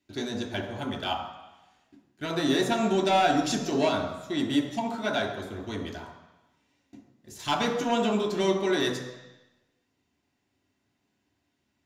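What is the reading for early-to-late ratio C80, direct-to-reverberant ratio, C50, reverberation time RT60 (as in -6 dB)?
9.0 dB, 0.5 dB, 7.0 dB, 1.0 s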